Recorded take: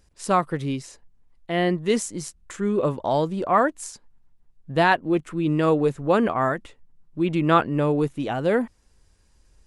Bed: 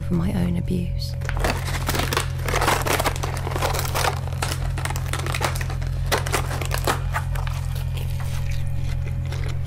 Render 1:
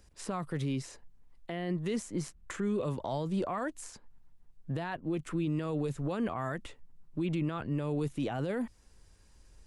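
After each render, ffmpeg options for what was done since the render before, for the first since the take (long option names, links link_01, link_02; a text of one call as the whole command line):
ffmpeg -i in.wav -filter_complex "[0:a]acrossover=split=160|2800[link_01][link_02][link_03];[link_01]acompressor=threshold=-32dB:ratio=4[link_04];[link_02]acompressor=threshold=-29dB:ratio=4[link_05];[link_03]acompressor=threshold=-47dB:ratio=4[link_06];[link_04][link_05][link_06]amix=inputs=3:normalize=0,alimiter=level_in=1dB:limit=-24dB:level=0:latency=1:release=23,volume=-1dB" out.wav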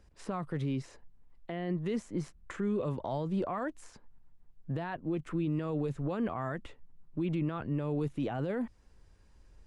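ffmpeg -i in.wav -af "lowpass=frequency=2300:poles=1" out.wav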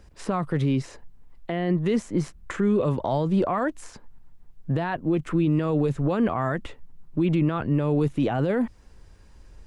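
ffmpeg -i in.wav -af "volume=10dB" out.wav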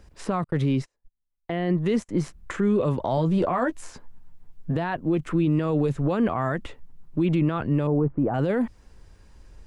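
ffmpeg -i in.wav -filter_complex "[0:a]asettb=1/sr,asplit=3[link_01][link_02][link_03];[link_01]atrim=end=0.444[link_04];[link_02]atrim=start=0.44:end=2.09,asetpts=PTS-STARTPTS,afade=type=in:duration=0.004:curve=qsin,afade=type=out:start_time=1.646:duration=0.004:curve=qsin,agate=range=-35dB:threshold=-35dB:ratio=16:release=100:detection=peak[link_05];[link_03]atrim=start=2.086[link_06];[link_04][link_05]acrossfade=duration=0.004:curve1=hsin:curve2=qsin[link_07];[link_07][link_06]acrossfade=duration=0.004:curve1=qsin:curve2=hsin,asettb=1/sr,asplit=3[link_08][link_09][link_10];[link_08]atrim=end=3.164[link_11];[link_09]atrim=start=3.16:end=4.76,asetpts=PTS-STARTPTS,afade=type=in:duration=0.004:curve=qsin,afade=type=out:start_time=1.596:duration=0.004:curve=qsin,asplit=2[link_12][link_13];[link_13]adelay=12,volume=-5.5dB[link_14];[link_12][link_14]amix=inputs=2:normalize=0,atrim=end_sample=70560[link_15];[link_10]atrim=start=4.756[link_16];[link_11][link_15]acrossfade=duration=0.004:curve1=hsin:curve2=qsin[link_17];[link_17][link_16]acrossfade=duration=0.004:curve1=qsin:curve2=hsin,asettb=1/sr,asplit=3[link_18][link_19][link_20];[link_18]atrim=end=7.874[link_21];[link_19]atrim=start=7.87:end=8.34,asetpts=PTS-STARTPTS,afade=type=in:duration=0.004:curve=qsin,afade=type=out:start_time=0.466:duration=0.004:curve=qsin,lowpass=frequency=1300:width=0.5412,lowpass=frequency=1300:width=1.3066[link_22];[link_20]atrim=start=8.336[link_23];[link_21][link_22]acrossfade=duration=0.004:curve1=hsin:curve2=qsin[link_24];[link_24][link_23]acrossfade=duration=0.004:curve1=qsin:curve2=hsin" out.wav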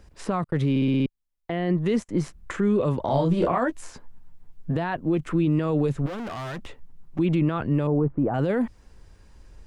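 ffmpeg -i in.wav -filter_complex "[0:a]asettb=1/sr,asplit=3[link_01][link_02][link_03];[link_01]atrim=end=3.054[link_04];[link_02]atrim=start=3.05:end=3.58,asetpts=PTS-STARTPTS,afade=type=in:duration=0.004:curve=qsin,afade=type=out:start_time=0.526:duration=0.004:curve=qsin,asplit=2[link_05][link_06];[link_06]adelay=29,volume=-3dB[link_07];[link_05][link_07]amix=inputs=2:normalize=0,atrim=end_sample=23373[link_08];[link_03]atrim=start=3.576[link_09];[link_04][link_08]acrossfade=duration=0.004:curve1=hsin:curve2=qsin[link_10];[link_10][link_09]acrossfade=duration=0.004:curve1=qsin:curve2=hsin,asettb=1/sr,asplit=3[link_11][link_12][link_13];[link_11]atrim=end=6.064[link_14];[link_12]atrim=start=6.06:end=7.19,asetpts=PTS-STARTPTS,afade=type=in:duration=0.004:curve=qsin,afade=type=out:start_time=1.126:duration=0.004:curve=qsin,asoftclip=type=hard:threshold=-31dB[link_15];[link_13]atrim=start=7.186[link_16];[link_14][link_15]acrossfade=duration=0.004:curve1=hsin:curve2=qsin[link_17];[link_17][link_16]acrossfade=duration=0.004:curve1=qsin:curve2=hsin,asplit=7[link_18][link_19][link_20][link_21][link_22][link_23][link_24];[link_18]atrim=end=0.762[link_25];[link_19]atrim=start=0.698:end=0.762[link_26];[link_20]atrim=start=0.698:end=0.762[link_27];[link_21]atrim=start=0.698:end=0.762[link_28];[link_22]atrim=start=0.698:end=0.762[link_29];[link_23]atrim=start=0.698:end=0.762[link_30];[link_24]atrim=start=1.058[link_31];[link_25][link_26]acrossfade=duration=0.004:curve1=hsin:curve2=hsin[link_32];[link_32][link_27]acrossfade=duration=0.004:curve1=hsin:curve2=hsin[link_33];[link_33][link_28]acrossfade=duration=0.004:curve1=hsin:curve2=hsin[link_34];[link_34][link_29]acrossfade=duration=0.004:curve1=hsin:curve2=hsin[link_35];[link_35][link_30]acrossfade=duration=0.004:curve1=hsin:curve2=hsin[link_36];[link_36][link_31]acrossfade=duration=0.004:curve1=hsin:curve2=hsin" out.wav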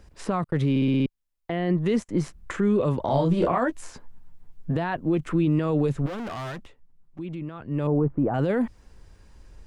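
ffmpeg -i in.wav -filter_complex "[0:a]asplit=3[link_01][link_02][link_03];[link_01]atrim=end=6.7,asetpts=PTS-STARTPTS,afade=type=out:start_time=6.49:duration=0.21:silence=0.251189[link_04];[link_02]atrim=start=6.7:end=7.66,asetpts=PTS-STARTPTS,volume=-12dB[link_05];[link_03]atrim=start=7.66,asetpts=PTS-STARTPTS,afade=type=in:duration=0.21:silence=0.251189[link_06];[link_04][link_05][link_06]concat=n=3:v=0:a=1" out.wav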